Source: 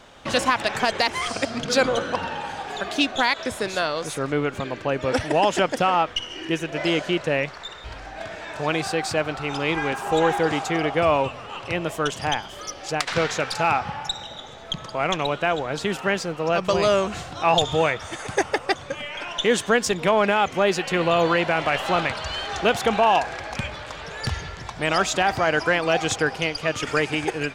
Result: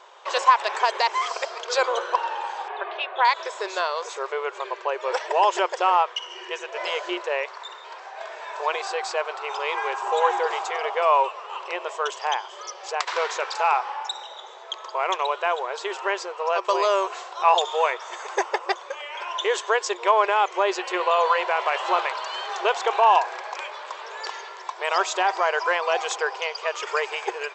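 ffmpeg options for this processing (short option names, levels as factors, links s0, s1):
-filter_complex "[0:a]asettb=1/sr,asplit=3[s0][s1][s2];[s0]atrim=end=2.684[s3];[s1]atrim=start=2.68:end=3.25,asetpts=PTS-STARTPTS,afade=t=in:d=0.004:c=qsin,afade=t=out:st=0.566:d=0.004:c=qsin,lowpass=f=2900:w=0.5412,lowpass=f=2900:w=1.3066[s4];[s2]atrim=start=3.246[s5];[s3][s4]acrossfade=d=0.004:c1=hsin:c2=qsin[s6];[s6][s5]acrossfade=d=0.004:c1=qsin:c2=hsin,afftfilt=real='re*between(b*sr/4096,350,8100)':imag='im*between(b*sr/4096,350,8100)':win_size=4096:overlap=0.75,equalizer=f=1000:t=o:w=0.37:g=12,volume=0.668"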